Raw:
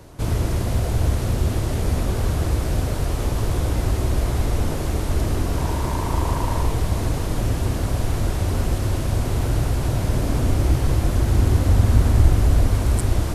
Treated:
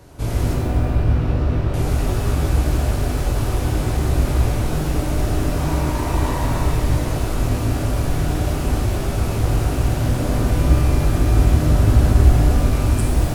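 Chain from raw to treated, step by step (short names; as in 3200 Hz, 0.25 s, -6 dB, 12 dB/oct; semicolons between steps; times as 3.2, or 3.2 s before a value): 0.53–1.74 air absorption 340 m; shimmer reverb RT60 1.4 s, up +12 st, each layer -8 dB, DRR -1.5 dB; gain -2.5 dB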